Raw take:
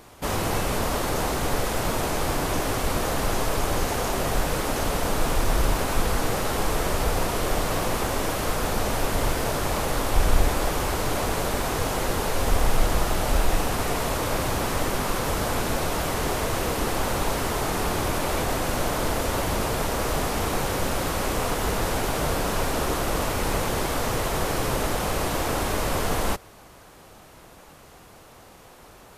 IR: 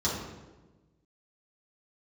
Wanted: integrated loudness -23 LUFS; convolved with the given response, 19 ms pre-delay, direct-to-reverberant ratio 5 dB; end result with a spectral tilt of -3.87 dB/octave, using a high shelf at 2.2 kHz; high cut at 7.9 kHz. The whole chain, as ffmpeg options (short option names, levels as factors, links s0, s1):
-filter_complex "[0:a]lowpass=7900,highshelf=f=2200:g=6.5,asplit=2[s0][s1];[1:a]atrim=start_sample=2205,adelay=19[s2];[s1][s2]afir=irnorm=-1:irlink=0,volume=0.188[s3];[s0][s3]amix=inputs=2:normalize=0,volume=0.944"